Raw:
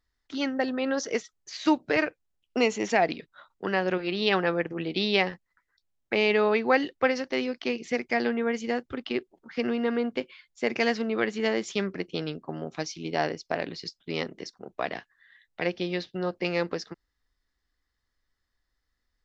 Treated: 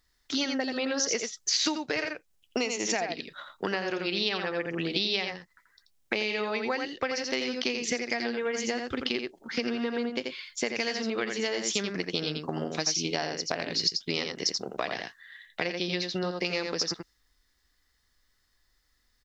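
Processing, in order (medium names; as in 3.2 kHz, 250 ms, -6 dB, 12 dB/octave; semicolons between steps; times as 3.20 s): treble shelf 2.8 kHz +8.5 dB; delay 84 ms -6 dB; compression 10:1, threshold -32 dBFS, peak gain reduction 17.5 dB; dynamic bell 5.6 kHz, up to +6 dB, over -59 dBFS, Q 1.2; trim +5 dB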